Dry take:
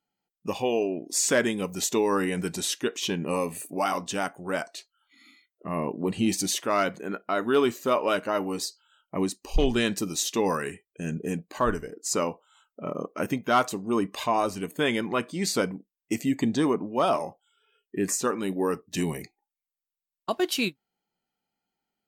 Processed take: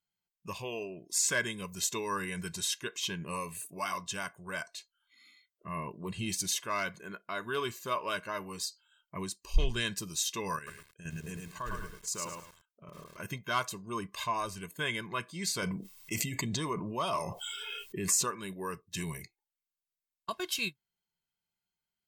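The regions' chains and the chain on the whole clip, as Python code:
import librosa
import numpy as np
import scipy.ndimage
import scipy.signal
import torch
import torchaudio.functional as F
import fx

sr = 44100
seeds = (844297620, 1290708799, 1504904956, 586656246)

y = fx.chain(x, sr, fx.level_steps(step_db=10),
    fx.echo_crushed(ms=107, feedback_pct=35, bits=8, wet_db=-3), at=(10.56, 13.25))
y = fx.chain(y, sr, fx.notch(hz=1600.0, q=6.5),
    fx.env_flatten(amount_pct=70), at=(15.62, 18.3))
y = fx.peak_eq(y, sr, hz=510.0, db=-14.5, octaves=0.98)
y = y + 0.74 * np.pad(y, (int(1.9 * sr / 1000.0), 0))[:len(y)]
y = y * librosa.db_to_amplitude(-5.5)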